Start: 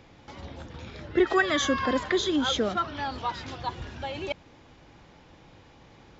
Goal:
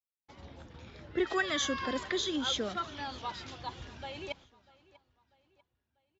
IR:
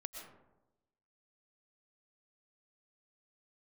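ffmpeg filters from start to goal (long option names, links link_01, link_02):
-filter_complex "[0:a]agate=range=-50dB:threshold=-44dB:ratio=16:detection=peak,asplit=2[link_01][link_02];[link_02]aecho=0:1:643|1286|1929:0.0794|0.0365|0.0168[link_03];[link_01][link_03]amix=inputs=2:normalize=0,adynamicequalizer=threshold=0.01:dfrequency=2200:dqfactor=0.7:tfrequency=2200:tqfactor=0.7:attack=5:release=100:ratio=0.375:range=3:mode=boostabove:tftype=highshelf,volume=-8.5dB"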